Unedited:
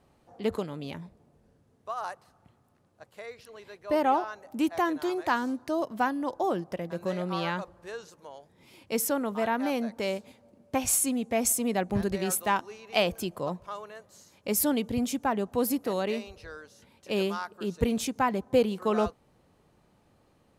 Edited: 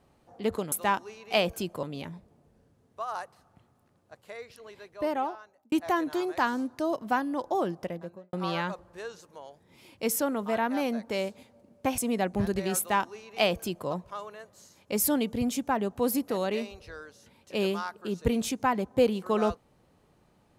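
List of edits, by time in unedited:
3.61–4.61 fade out
6.7–7.22 studio fade out
10.87–11.54 cut
12.34–13.45 copy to 0.72

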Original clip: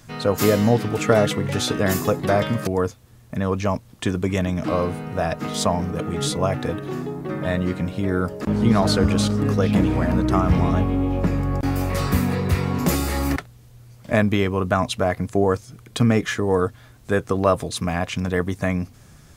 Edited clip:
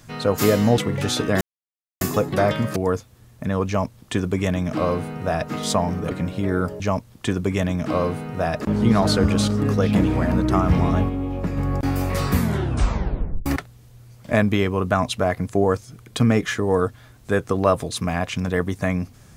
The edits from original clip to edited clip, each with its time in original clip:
0.78–1.29 cut
1.92 insert silence 0.60 s
3.58–5.38 copy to 8.4
6.02–7.71 cut
10.89–11.37 gain -4.5 dB
12.15 tape stop 1.11 s

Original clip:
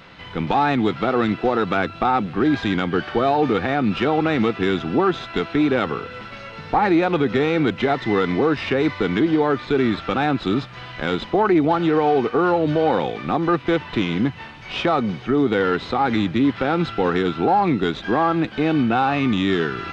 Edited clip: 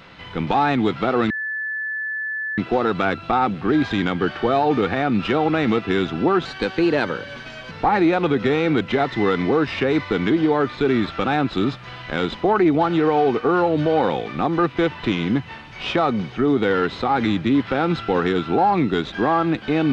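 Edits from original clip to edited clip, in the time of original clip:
1.3 add tone 1740 Hz -23.5 dBFS 1.28 s
5.17–6.61 speed 114%

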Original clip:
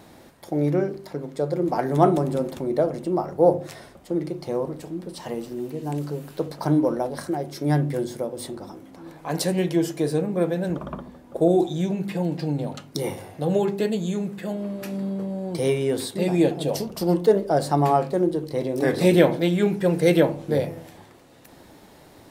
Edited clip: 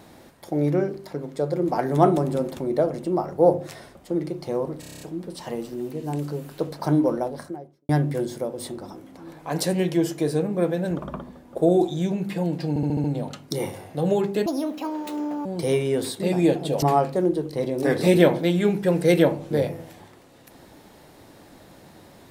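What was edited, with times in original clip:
4.8 stutter 0.03 s, 8 plays
6.89–7.68 studio fade out
12.48 stutter 0.07 s, 6 plays
13.9–15.41 speed 152%
16.78–17.8 cut

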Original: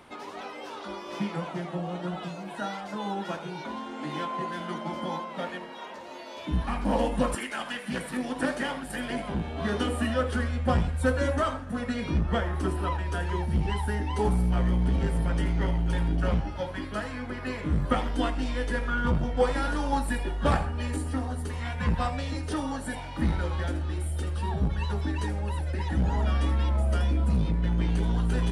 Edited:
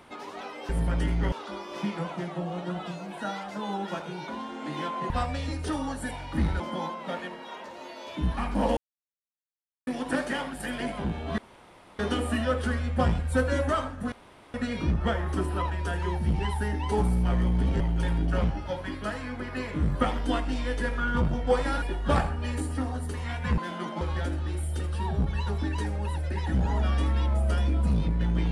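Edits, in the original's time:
4.47–4.9 swap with 21.94–23.44
7.07–8.17 mute
9.68 insert room tone 0.61 s
11.81 insert room tone 0.42 s
15.07–15.7 move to 0.69
19.72–20.18 cut

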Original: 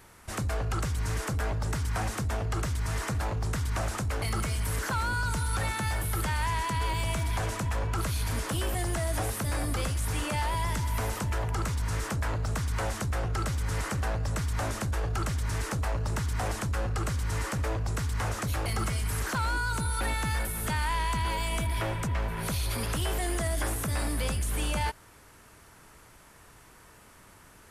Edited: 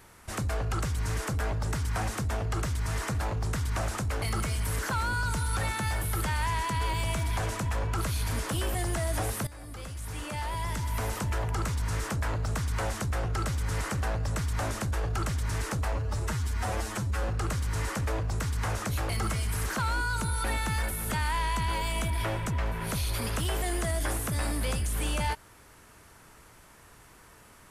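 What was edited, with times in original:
9.47–11.2 fade in, from -18 dB
15.93–16.8 stretch 1.5×

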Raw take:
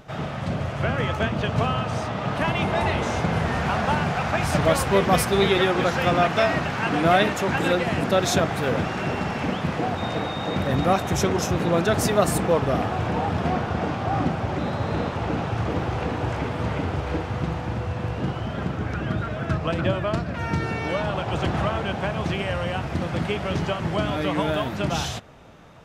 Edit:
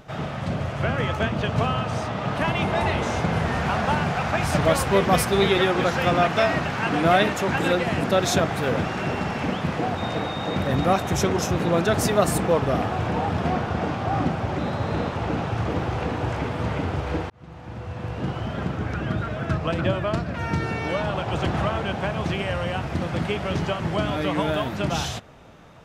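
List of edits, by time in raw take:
17.3–18.4 fade in

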